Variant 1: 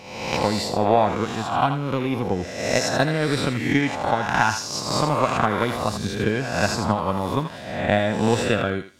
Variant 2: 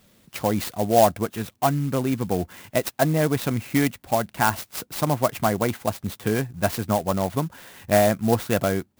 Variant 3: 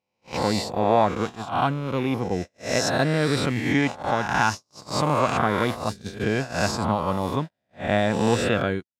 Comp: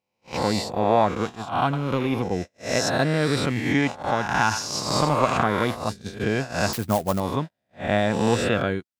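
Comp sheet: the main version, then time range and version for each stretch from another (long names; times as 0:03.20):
3
0:01.73–0:02.22: punch in from 1
0:04.51–0:05.43: punch in from 1
0:06.73–0:07.20: punch in from 2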